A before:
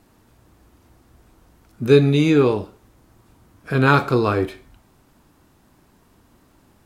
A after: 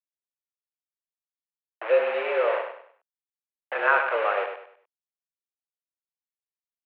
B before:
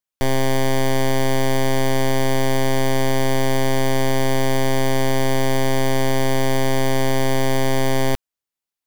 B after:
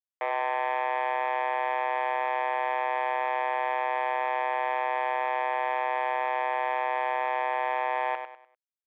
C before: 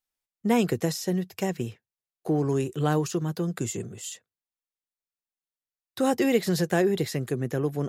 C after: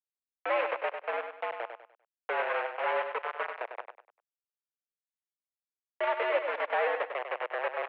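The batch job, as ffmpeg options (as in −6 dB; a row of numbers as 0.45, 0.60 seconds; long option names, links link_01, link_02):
-af "aemphasis=mode=reproduction:type=cd,aresample=16000,acrusher=bits=3:mix=0:aa=0.000001,aresample=44100,aecho=1:1:99|198|297|396:0.422|0.139|0.0459|0.0152,highpass=frequency=440:width_type=q:width=0.5412,highpass=frequency=440:width_type=q:width=1.307,lowpass=frequency=2500:width_type=q:width=0.5176,lowpass=frequency=2500:width_type=q:width=0.7071,lowpass=frequency=2500:width_type=q:width=1.932,afreqshift=100,volume=-3.5dB"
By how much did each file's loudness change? −6.5, −7.5, −5.5 LU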